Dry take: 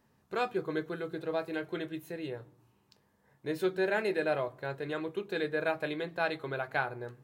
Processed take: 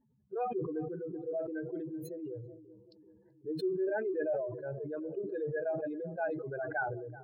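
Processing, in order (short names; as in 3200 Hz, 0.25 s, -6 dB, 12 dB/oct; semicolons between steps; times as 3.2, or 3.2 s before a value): spectral contrast raised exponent 3; narrowing echo 0.382 s, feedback 62%, band-pass 310 Hz, level -17 dB; sustainer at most 52 dB/s; gain -3 dB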